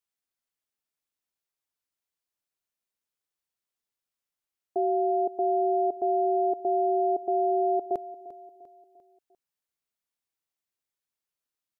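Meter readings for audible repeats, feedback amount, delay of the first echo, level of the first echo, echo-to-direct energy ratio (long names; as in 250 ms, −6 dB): 3, 47%, 348 ms, −17.0 dB, −16.0 dB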